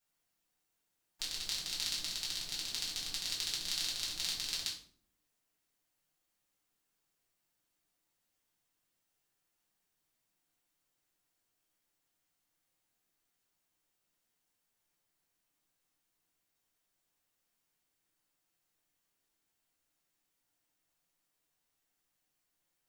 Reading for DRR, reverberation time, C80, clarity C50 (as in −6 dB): −6.0 dB, 0.60 s, 11.0 dB, 7.0 dB